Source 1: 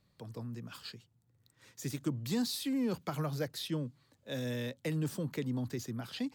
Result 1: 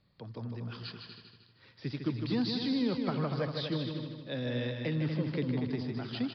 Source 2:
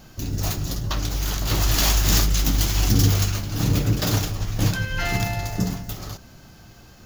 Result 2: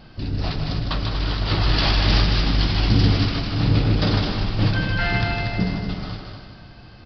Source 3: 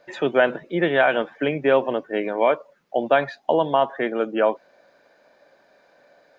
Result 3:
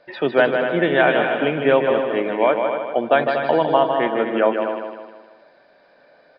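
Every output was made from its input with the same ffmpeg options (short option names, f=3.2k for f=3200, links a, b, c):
-filter_complex "[0:a]asplit=2[a][b];[b]aecho=0:1:239:0.398[c];[a][c]amix=inputs=2:normalize=0,aresample=11025,aresample=44100,asplit=2[d][e];[e]aecho=0:1:155|310|465|620|775|930:0.501|0.231|0.106|0.0488|0.0224|0.0103[f];[d][f]amix=inputs=2:normalize=0,volume=1.5dB"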